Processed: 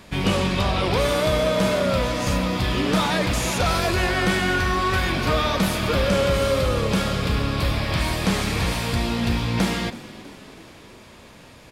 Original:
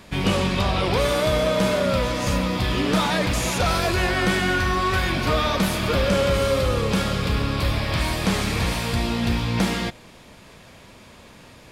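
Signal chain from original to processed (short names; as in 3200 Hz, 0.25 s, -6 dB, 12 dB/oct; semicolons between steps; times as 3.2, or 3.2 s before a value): frequency-shifting echo 0.325 s, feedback 59%, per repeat +45 Hz, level -18 dB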